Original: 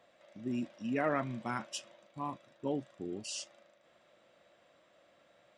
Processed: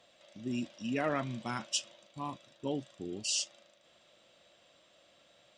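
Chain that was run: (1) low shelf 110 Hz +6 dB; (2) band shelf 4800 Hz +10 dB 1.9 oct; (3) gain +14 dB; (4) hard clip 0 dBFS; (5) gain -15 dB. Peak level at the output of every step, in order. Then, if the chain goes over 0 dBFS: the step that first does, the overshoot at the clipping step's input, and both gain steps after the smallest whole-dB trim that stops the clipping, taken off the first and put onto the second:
-19.5, -16.5, -2.5, -2.5, -17.5 dBFS; no overload

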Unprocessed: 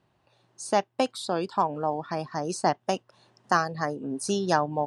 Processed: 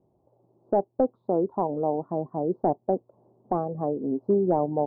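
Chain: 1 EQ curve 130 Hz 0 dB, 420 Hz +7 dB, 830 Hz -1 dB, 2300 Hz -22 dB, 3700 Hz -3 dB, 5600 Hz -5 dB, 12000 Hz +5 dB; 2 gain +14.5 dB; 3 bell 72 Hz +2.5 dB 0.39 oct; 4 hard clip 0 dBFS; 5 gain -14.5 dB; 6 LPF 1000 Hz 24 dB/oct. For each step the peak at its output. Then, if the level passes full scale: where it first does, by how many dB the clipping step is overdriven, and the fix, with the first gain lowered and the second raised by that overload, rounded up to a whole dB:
-8.0, +6.5, +6.5, 0.0, -14.5, -13.5 dBFS; step 2, 6.5 dB; step 2 +7.5 dB, step 5 -7.5 dB

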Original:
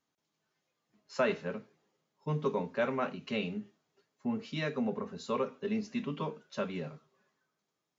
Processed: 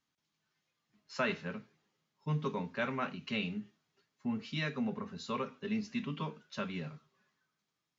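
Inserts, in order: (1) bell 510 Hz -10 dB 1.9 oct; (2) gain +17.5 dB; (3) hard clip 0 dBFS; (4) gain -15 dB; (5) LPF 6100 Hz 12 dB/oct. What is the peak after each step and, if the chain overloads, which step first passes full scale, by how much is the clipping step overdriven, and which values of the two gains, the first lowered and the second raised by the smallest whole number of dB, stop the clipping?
-22.0, -4.5, -4.5, -19.5, -19.5 dBFS; no overload

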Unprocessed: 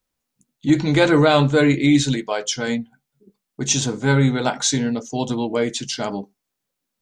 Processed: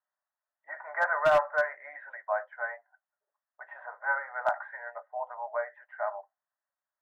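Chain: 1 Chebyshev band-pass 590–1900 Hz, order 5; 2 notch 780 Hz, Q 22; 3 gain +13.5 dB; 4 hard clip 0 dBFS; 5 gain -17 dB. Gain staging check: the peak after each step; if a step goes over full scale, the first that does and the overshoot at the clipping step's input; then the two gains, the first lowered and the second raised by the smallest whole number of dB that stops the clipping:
-8.0, -8.0, +5.5, 0.0, -17.0 dBFS; step 3, 5.5 dB; step 3 +7.5 dB, step 5 -11 dB

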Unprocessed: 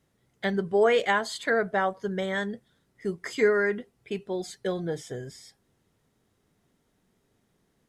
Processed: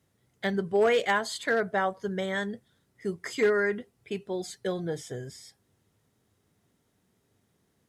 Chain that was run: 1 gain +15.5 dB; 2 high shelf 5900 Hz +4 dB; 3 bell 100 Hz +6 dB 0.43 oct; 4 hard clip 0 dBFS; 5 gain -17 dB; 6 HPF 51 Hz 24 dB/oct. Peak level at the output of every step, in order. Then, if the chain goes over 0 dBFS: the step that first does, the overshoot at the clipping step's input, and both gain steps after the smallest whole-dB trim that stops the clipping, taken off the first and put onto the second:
+4.0, +4.0, +4.0, 0.0, -17.0, -15.0 dBFS; step 1, 4.0 dB; step 1 +11.5 dB, step 5 -13 dB

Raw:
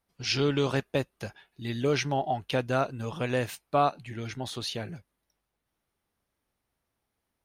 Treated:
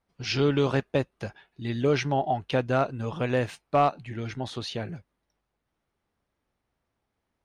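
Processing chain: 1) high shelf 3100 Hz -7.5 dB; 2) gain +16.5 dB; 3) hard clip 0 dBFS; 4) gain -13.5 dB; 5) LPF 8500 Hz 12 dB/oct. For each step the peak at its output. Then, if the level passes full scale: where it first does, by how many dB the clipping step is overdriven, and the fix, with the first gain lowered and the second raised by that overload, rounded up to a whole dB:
-13.0, +3.5, 0.0, -13.5, -13.5 dBFS; step 2, 3.5 dB; step 2 +12.5 dB, step 4 -9.5 dB

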